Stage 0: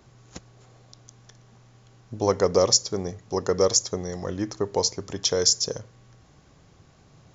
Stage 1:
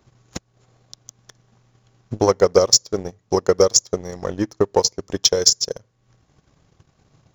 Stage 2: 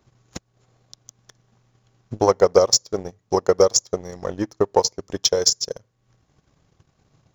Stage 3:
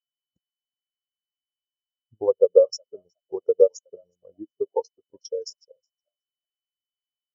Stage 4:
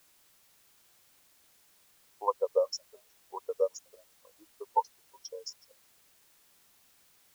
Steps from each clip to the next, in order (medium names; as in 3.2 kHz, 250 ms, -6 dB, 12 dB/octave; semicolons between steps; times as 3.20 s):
transient shaper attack +9 dB, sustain -9 dB; waveshaping leveller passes 1; trim -2.5 dB
dynamic bell 780 Hz, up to +6 dB, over -29 dBFS, Q 0.98; trim -3.5 dB
whistle 3 kHz -46 dBFS; frequency-shifting echo 367 ms, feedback 30%, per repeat +68 Hz, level -16 dB; spectral contrast expander 2.5:1
resonant high-pass 1 kHz, resonance Q 11; added noise white -61 dBFS; trim -3.5 dB